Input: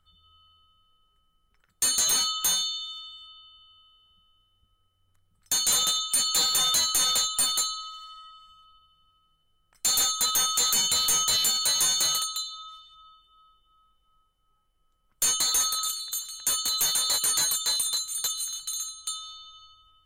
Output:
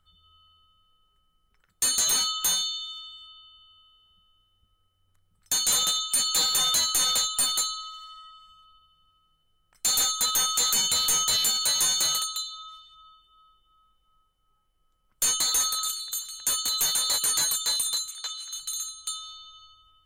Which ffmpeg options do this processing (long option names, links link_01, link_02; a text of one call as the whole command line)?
ffmpeg -i in.wav -filter_complex "[0:a]asplit=3[link_01][link_02][link_03];[link_01]afade=type=out:start_time=18.1:duration=0.02[link_04];[link_02]highpass=740,lowpass=4500,afade=type=in:start_time=18.1:duration=0.02,afade=type=out:start_time=18.51:duration=0.02[link_05];[link_03]afade=type=in:start_time=18.51:duration=0.02[link_06];[link_04][link_05][link_06]amix=inputs=3:normalize=0" out.wav